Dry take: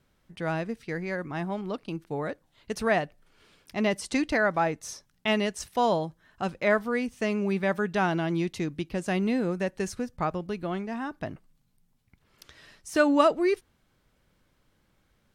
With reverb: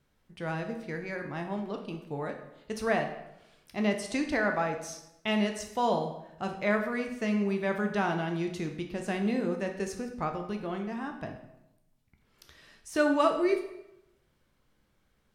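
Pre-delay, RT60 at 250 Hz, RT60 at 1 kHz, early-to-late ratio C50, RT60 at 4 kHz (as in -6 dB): 12 ms, 0.90 s, 0.85 s, 8.0 dB, 0.70 s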